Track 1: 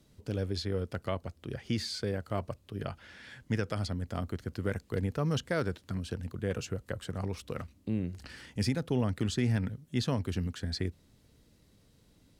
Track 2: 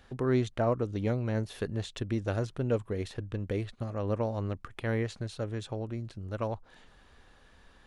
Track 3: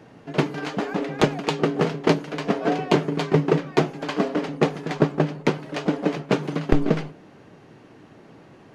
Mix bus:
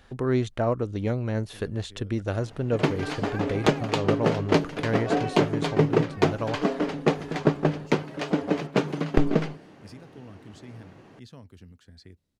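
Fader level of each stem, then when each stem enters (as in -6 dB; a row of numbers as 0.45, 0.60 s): -16.0, +3.0, -2.0 dB; 1.25, 0.00, 2.45 s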